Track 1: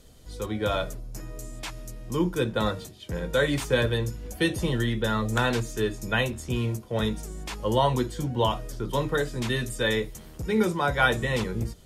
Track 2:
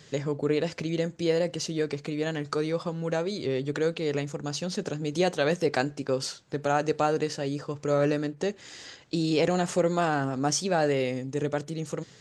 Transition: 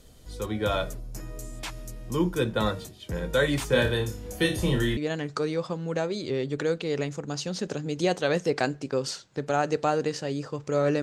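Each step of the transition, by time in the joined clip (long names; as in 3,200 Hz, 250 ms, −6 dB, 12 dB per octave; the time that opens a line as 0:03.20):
track 1
0:03.69–0:04.97: flutter between parallel walls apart 4.9 metres, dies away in 0.3 s
0:04.97: continue with track 2 from 0:02.13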